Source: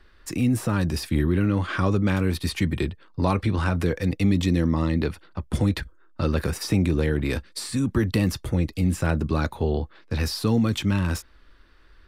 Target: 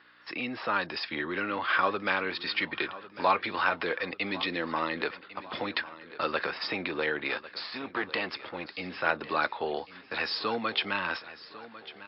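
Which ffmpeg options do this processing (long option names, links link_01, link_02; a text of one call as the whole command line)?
ffmpeg -i in.wav -filter_complex "[0:a]asettb=1/sr,asplit=3[link_01][link_02][link_03];[link_01]atrim=end=7.284[link_04];[link_02]atrim=start=7.28:end=8.71,asetpts=PTS-STARTPTS,afade=type=in:duration=0.004:curve=qsin,afade=type=out:start_time=1.426:duration=0.004:curve=qsin,aeval=exprs='if(lt(val(0),0),0.447*val(0),val(0))':channel_layout=same[link_05];[link_03]atrim=start=8.706[link_06];[link_04][link_05]acrossfade=duration=0.004:curve1=hsin:curve2=qsin[link_07];[link_07][link_06]acrossfade=duration=0.004:curve1=qsin:curve2=hsin,aeval=exprs='val(0)+0.00398*(sin(2*PI*60*n/s)+sin(2*PI*2*60*n/s)/2+sin(2*PI*3*60*n/s)/3+sin(2*PI*4*60*n/s)/4+sin(2*PI*5*60*n/s)/5)':channel_layout=same,highpass=770,lowpass=3800,asplit=2[link_08][link_09];[link_09]aecho=0:1:1099|2198|3297|4396:0.15|0.0703|0.0331|0.0155[link_10];[link_08][link_10]amix=inputs=2:normalize=0,volume=5dB" -ar 12000 -c:a libmp3lame -b:a 48k out.mp3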